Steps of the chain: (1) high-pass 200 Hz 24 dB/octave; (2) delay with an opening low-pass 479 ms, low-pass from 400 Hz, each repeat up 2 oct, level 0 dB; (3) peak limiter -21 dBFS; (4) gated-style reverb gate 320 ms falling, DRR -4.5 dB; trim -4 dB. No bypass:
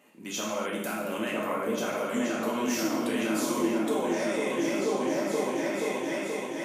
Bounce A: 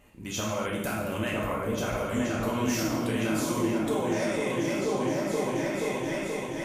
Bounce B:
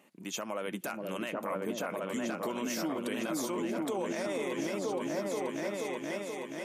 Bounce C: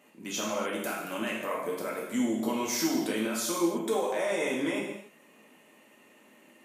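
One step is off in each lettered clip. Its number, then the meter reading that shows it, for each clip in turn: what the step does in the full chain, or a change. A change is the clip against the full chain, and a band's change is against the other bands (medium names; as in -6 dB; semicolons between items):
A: 1, 125 Hz band +10.5 dB; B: 4, 125 Hz band +2.5 dB; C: 2, 8 kHz band +3.5 dB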